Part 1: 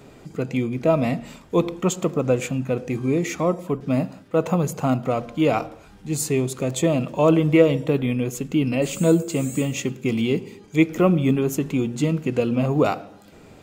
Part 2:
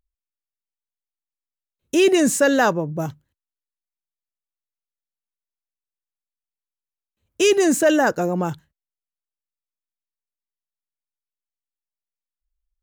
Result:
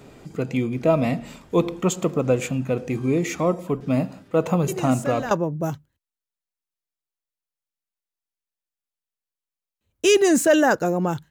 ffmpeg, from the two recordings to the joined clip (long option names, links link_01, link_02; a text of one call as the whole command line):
ffmpeg -i cue0.wav -i cue1.wav -filter_complex "[1:a]asplit=2[link_01][link_02];[0:a]apad=whole_dur=11.3,atrim=end=11.3,atrim=end=5.312[link_03];[link_02]atrim=start=2.668:end=8.66[link_04];[link_01]atrim=start=2.04:end=2.67,asetpts=PTS-STARTPTS,volume=-14dB,afade=type=in:duration=0.004:curve=hsin,afade=type=out:start_time=0.626:duration=0.004:curve=hsin,adelay=4680[link_05];[link_03][link_04]acrossfade=duration=0.004:curve1=hsin:curve2=hsin[link_06];[link_06][link_05]amix=inputs=2:normalize=0" out.wav